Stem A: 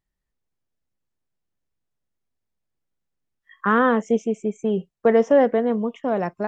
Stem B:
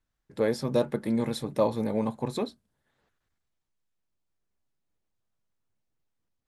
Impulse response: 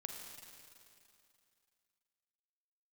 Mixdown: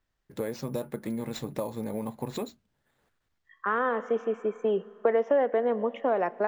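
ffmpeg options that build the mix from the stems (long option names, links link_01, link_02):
-filter_complex "[0:a]lowpass=5300,acrossover=split=300 3400:gain=0.0794 1 0.224[link_01][link_02][link_03];[link_01][link_02][link_03]amix=inputs=3:normalize=0,volume=2dB,asplit=2[link_04][link_05];[link_05]volume=-15.5dB[link_06];[1:a]acompressor=threshold=-31dB:ratio=6,acrusher=samples=4:mix=1:aa=0.000001,volume=1.5dB,asplit=2[link_07][link_08];[link_08]apad=whole_len=285702[link_09];[link_04][link_09]sidechaincompress=threshold=-57dB:ratio=3:attack=16:release=1290[link_10];[2:a]atrim=start_sample=2205[link_11];[link_06][link_11]afir=irnorm=-1:irlink=0[link_12];[link_10][link_07][link_12]amix=inputs=3:normalize=0,acompressor=threshold=-22dB:ratio=4"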